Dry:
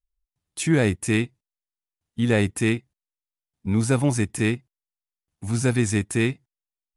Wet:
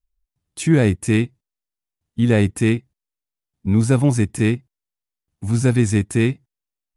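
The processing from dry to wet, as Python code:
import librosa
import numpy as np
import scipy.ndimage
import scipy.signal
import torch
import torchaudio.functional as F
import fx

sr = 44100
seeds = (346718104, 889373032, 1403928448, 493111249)

y = fx.low_shelf(x, sr, hz=440.0, db=6.5)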